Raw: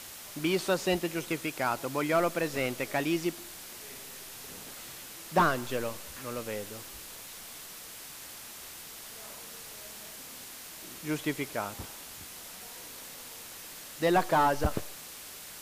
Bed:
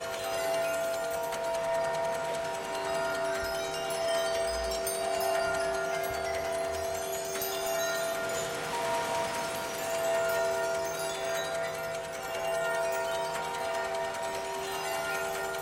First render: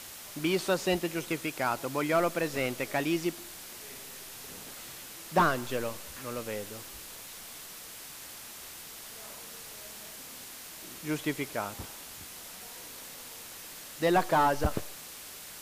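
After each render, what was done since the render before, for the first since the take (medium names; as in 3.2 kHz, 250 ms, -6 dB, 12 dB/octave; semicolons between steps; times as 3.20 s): no audible change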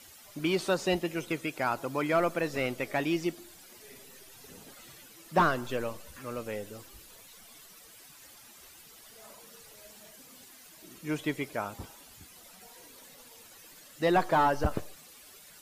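noise reduction 12 dB, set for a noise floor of -46 dBFS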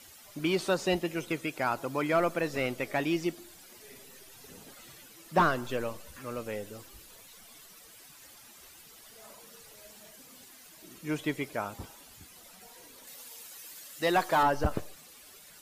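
13.07–14.43 s: tilt EQ +2 dB/octave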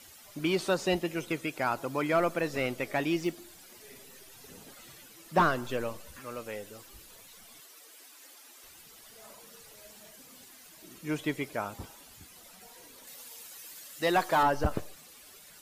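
3.19–4.37 s: short-mantissa float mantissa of 4-bit; 6.20–6.89 s: bass shelf 420 Hz -6.5 dB; 7.60–8.64 s: Chebyshev high-pass 260 Hz, order 5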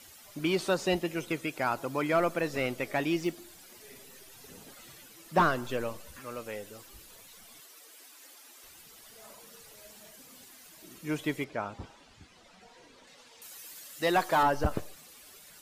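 11.44–13.42 s: distance through air 120 m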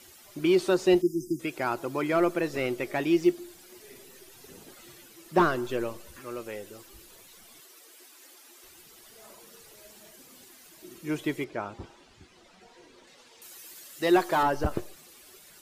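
1.02–1.40 s: spectral selection erased 370–4800 Hz; peaking EQ 360 Hz +12 dB 0.21 oct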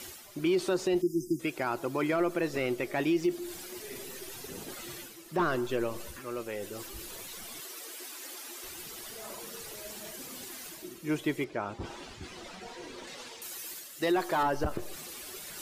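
peak limiter -19.5 dBFS, peak gain reduction 9.5 dB; reverse; upward compressor, threshold -33 dBFS; reverse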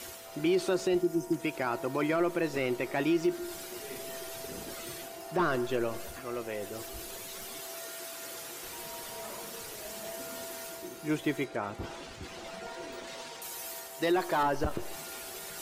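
add bed -15.5 dB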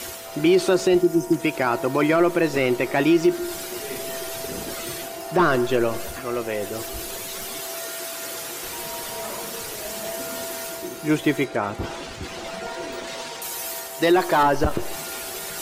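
trim +10 dB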